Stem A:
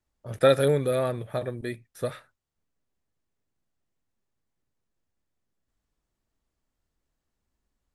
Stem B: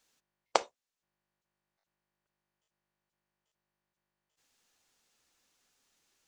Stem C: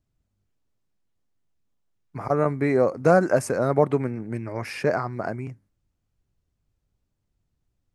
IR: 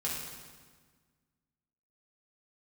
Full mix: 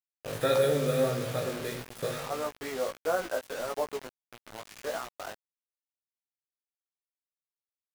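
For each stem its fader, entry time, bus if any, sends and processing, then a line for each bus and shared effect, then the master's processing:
-7.5 dB, 0.00 s, send -4.5 dB, per-bin compression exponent 0.6; hum 60 Hz, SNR 17 dB
-9.0 dB, 0.00 s, no send, dry
-6.0 dB, 0.00 s, send -20.5 dB, HPF 530 Hz 12 dB/oct; high shelf 3900 Hz -10.5 dB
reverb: on, RT60 1.5 s, pre-delay 3 ms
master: notches 60/120/180 Hz; bit-crush 6-bit; chorus 1.6 Hz, delay 16.5 ms, depth 3 ms

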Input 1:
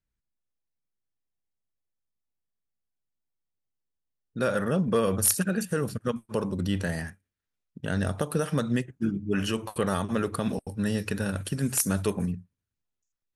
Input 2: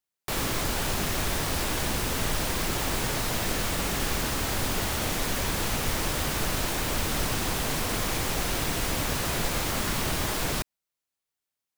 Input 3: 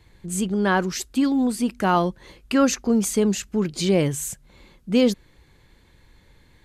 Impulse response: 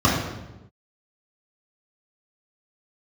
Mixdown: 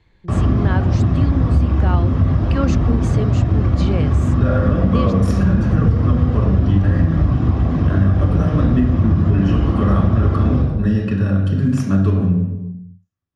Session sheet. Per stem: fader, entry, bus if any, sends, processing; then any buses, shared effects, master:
-3.0 dB, 0.00 s, send -13.5 dB, dry
-6.0 dB, 0.00 s, send -11 dB, reverb removal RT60 2 s; tilt -3.5 dB/oct
-3.0 dB, 0.00 s, no send, dry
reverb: on, RT60 1.0 s, pre-delay 3 ms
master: LPF 4200 Hz 12 dB/oct; compressor, threshold -10 dBFS, peak gain reduction 7 dB

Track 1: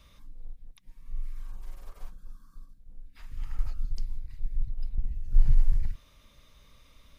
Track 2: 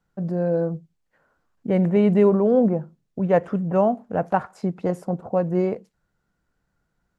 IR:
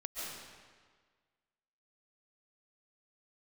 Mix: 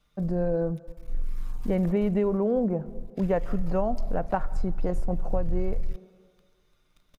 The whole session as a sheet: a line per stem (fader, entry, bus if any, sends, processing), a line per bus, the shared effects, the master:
-9.0 dB, 0.00 s, no send, comb 6.6 ms, depth 92%; sample leveller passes 3
-2.0 dB, 0.00 s, send -21.5 dB, dry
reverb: on, RT60 1.6 s, pre-delay 0.1 s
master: compressor, threshold -21 dBFS, peak gain reduction 9 dB

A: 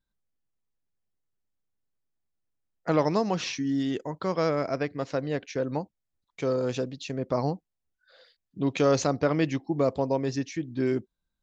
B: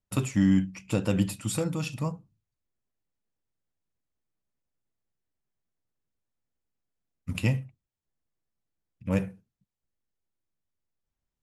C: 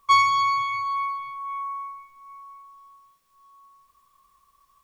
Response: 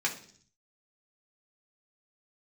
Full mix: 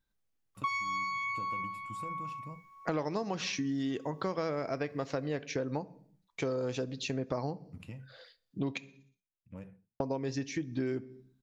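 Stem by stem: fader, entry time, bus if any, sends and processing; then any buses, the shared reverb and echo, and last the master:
+0.5 dB, 0.00 s, muted 8.78–10, no bus, send -16.5 dB, dry
-15.0 dB, 0.45 s, bus A, no send, compressor, threshold -26 dBFS, peak gain reduction 8.5 dB
-10.0 dB, 0.55 s, bus A, send -5 dB, dry
bus A: 0.0 dB, high shelf 3700 Hz -9 dB; compressor, threshold -34 dBFS, peak gain reduction 9.5 dB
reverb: on, RT60 0.55 s, pre-delay 3 ms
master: compressor 5:1, threshold -31 dBFS, peak gain reduction 13.5 dB

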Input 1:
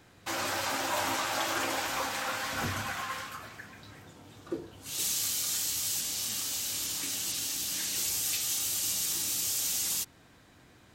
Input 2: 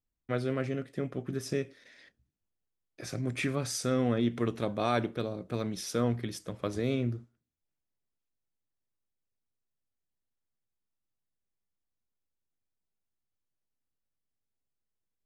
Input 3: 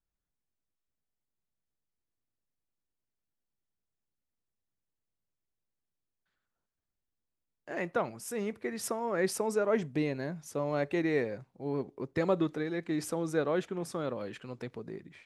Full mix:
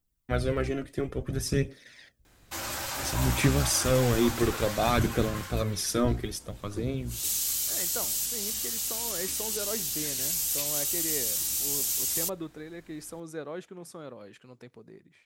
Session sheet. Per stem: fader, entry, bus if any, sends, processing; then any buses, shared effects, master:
-4.5 dB, 2.25 s, no send, octaver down 2 oct, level +3 dB
+2.5 dB, 0.00 s, no send, octaver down 1 oct, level -3 dB; phaser 0.58 Hz, delay 3.3 ms, feedback 46%; auto duck -19 dB, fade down 1.55 s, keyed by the third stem
-8.0 dB, 0.00 s, no send, dry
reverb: off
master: high shelf 6700 Hz +10.5 dB

